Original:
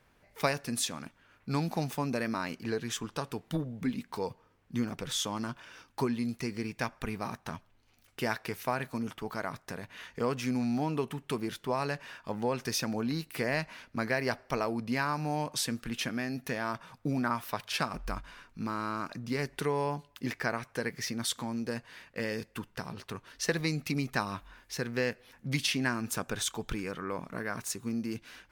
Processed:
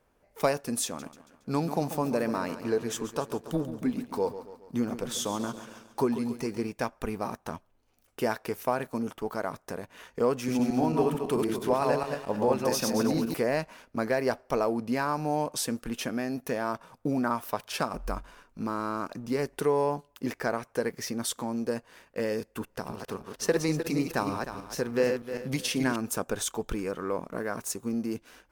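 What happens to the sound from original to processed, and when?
0.85–6.69 s: feedback delay 139 ms, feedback 58%, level -12 dB
10.37–13.34 s: backward echo that repeats 111 ms, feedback 50%, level -1.5 dB
22.45–25.96 s: backward echo that repeats 154 ms, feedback 51%, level -6 dB
whole clip: waveshaping leveller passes 1; graphic EQ 125/500/2000/4000 Hz -6/+4/-6/-6 dB

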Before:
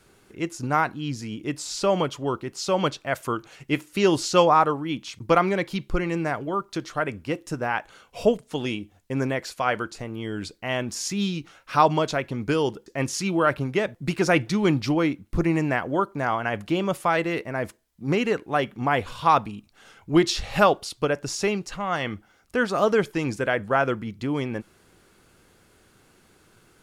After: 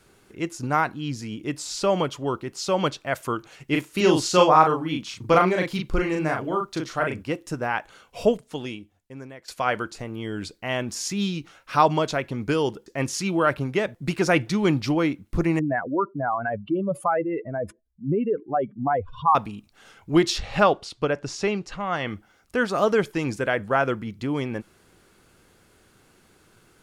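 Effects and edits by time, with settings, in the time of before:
3.71–7.23 s: doubling 38 ms -3 dB
8.32–9.48 s: fade out quadratic, to -16.5 dB
15.59–19.35 s: spectral contrast enhancement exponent 2.5
20.38–22.08 s: distance through air 73 m

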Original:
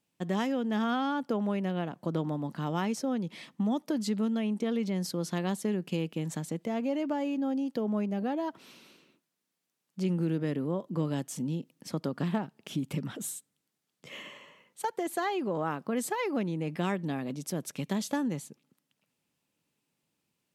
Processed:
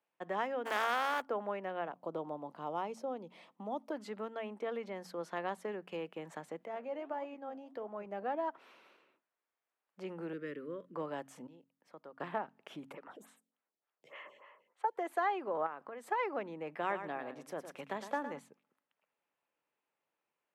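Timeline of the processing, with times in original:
0.65–1.20 s: spectral contrast reduction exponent 0.4
1.93–3.92 s: peaking EQ 1.7 kHz -13 dB 0.86 oct
6.65–8.06 s: flange 1.6 Hz, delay 2.2 ms, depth 8 ms, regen +81%
10.33–10.95 s: Butterworth band-stop 800 Hz, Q 0.92
11.47–12.20 s: gain -12 dB
12.92–14.96 s: lamp-driven phase shifter 3.4 Hz
15.66–16.07 s: compression, threshold -35 dBFS
16.70–18.39 s: feedback delay 111 ms, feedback 17%, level -9.5 dB
whole clip: three-band isolator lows -23 dB, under 460 Hz, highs -20 dB, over 2.2 kHz; de-hum 45.17 Hz, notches 6; trim +1 dB

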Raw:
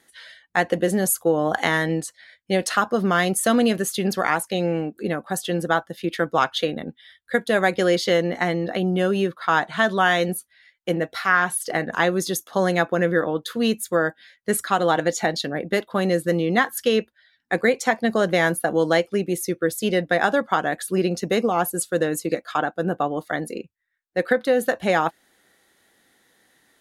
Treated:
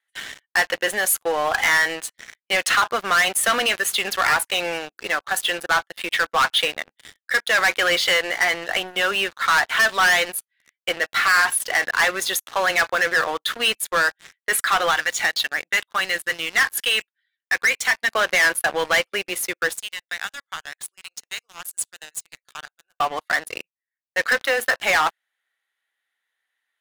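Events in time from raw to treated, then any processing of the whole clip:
14.91–18.12 s: peaking EQ 540 Hz -9 dB 2 oct
19.73–23.00 s: band-pass filter 7.2 kHz, Q 1.7
whole clip: high-pass 1.2 kHz 12 dB/octave; resonant high shelf 3.8 kHz -7.5 dB, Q 1.5; waveshaping leveller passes 5; trim -5.5 dB

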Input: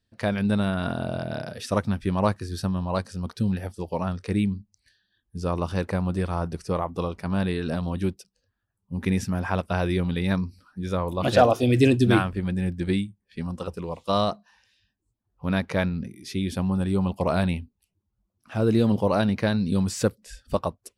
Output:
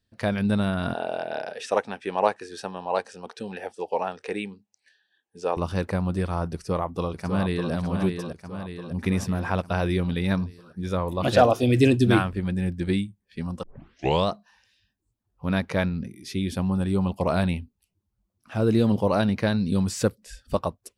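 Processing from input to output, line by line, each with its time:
0.94–5.57 s: cabinet simulation 410–8900 Hz, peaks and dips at 450 Hz +8 dB, 800 Hz +9 dB, 1.2 kHz -3 dB, 1.7 kHz +4 dB, 2.6 kHz +5 dB, 4.6 kHz -5 dB
6.53–7.72 s: echo throw 600 ms, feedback 60%, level -6 dB
13.63 s: tape start 0.65 s

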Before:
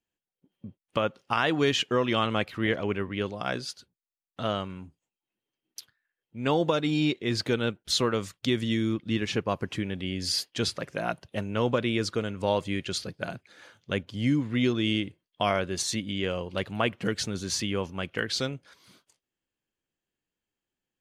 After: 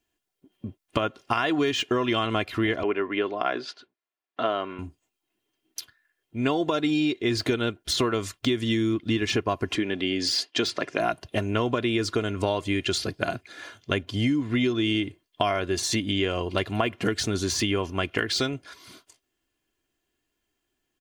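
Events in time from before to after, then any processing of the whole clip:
2.83–4.79 s: band-pass 310–2600 Hz
9.75–11.00 s: band-pass 200–6200 Hz
whole clip: de-esser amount 70%; comb 2.9 ms, depth 53%; compression, threshold -30 dBFS; trim +8.5 dB

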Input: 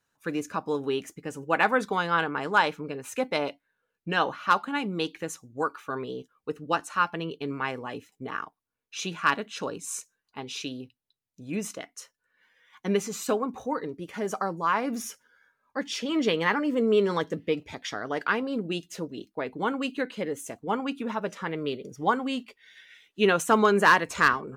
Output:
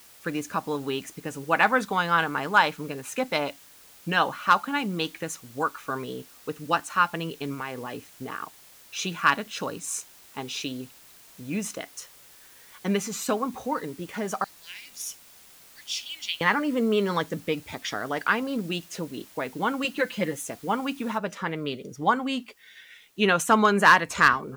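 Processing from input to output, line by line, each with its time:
7.54–8.41 s: compression 2.5:1, threshold -34 dBFS
14.44–16.41 s: inverse Chebyshev high-pass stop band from 1.3 kHz
19.84–20.47 s: comb 5.8 ms, depth 97%
21.18 s: noise floor step -55 dB -68 dB
whole clip: dynamic bell 400 Hz, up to -6 dB, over -38 dBFS, Q 1.6; trim +3 dB

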